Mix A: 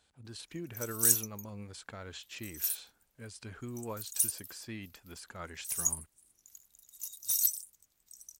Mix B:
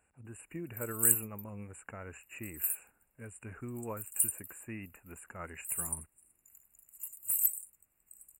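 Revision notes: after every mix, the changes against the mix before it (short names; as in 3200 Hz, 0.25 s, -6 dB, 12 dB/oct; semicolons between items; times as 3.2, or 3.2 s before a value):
master: add brick-wall FIR band-stop 2900–7000 Hz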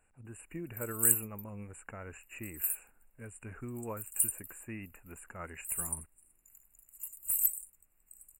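master: remove HPF 53 Hz 12 dB/oct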